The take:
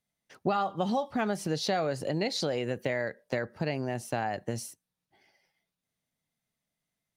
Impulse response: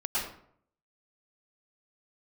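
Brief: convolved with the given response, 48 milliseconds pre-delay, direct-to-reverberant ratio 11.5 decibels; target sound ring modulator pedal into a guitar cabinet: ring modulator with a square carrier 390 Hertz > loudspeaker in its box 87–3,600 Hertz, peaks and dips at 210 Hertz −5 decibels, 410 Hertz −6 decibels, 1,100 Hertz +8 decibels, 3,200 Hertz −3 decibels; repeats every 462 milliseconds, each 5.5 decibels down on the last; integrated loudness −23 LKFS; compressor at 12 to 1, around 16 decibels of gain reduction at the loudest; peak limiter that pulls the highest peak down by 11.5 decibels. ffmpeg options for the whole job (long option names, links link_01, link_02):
-filter_complex "[0:a]acompressor=threshold=-41dB:ratio=12,alimiter=level_in=14.5dB:limit=-24dB:level=0:latency=1,volume=-14.5dB,aecho=1:1:462|924|1386|1848|2310|2772|3234:0.531|0.281|0.149|0.079|0.0419|0.0222|0.0118,asplit=2[link_01][link_02];[1:a]atrim=start_sample=2205,adelay=48[link_03];[link_02][link_03]afir=irnorm=-1:irlink=0,volume=-19dB[link_04];[link_01][link_04]amix=inputs=2:normalize=0,aeval=exprs='val(0)*sgn(sin(2*PI*390*n/s))':channel_layout=same,highpass=87,equalizer=frequency=210:width_type=q:width=4:gain=-5,equalizer=frequency=410:width_type=q:width=4:gain=-6,equalizer=frequency=1100:width_type=q:width=4:gain=8,equalizer=frequency=3200:width_type=q:width=4:gain=-3,lowpass=frequency=3600:width=0.5412,lowpass=frequency=3600:width=1.3066,volume=24dB"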